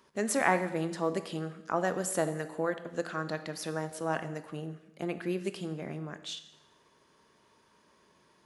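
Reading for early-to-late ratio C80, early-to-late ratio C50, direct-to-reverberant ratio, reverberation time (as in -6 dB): 14.0 dB, 12.0 dB, 10.0 dB, 1.0 s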